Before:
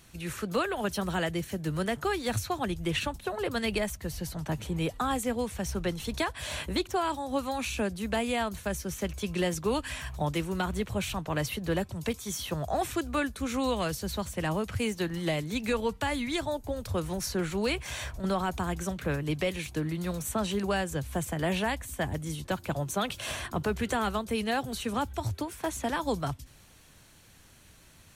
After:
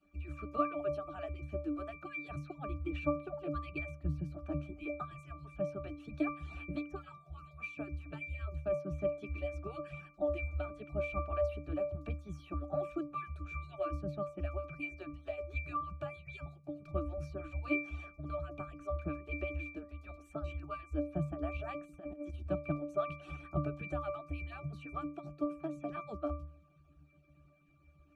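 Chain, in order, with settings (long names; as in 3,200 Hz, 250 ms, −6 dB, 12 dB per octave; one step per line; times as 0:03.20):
harmonic-percussive split with one part muted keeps percussive
resonances in every octave D, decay 0.37 s
0:21.57–0:22.48: compressor whose output falls as the input rises −55 dBFS, ratio −0.5
level +14 dB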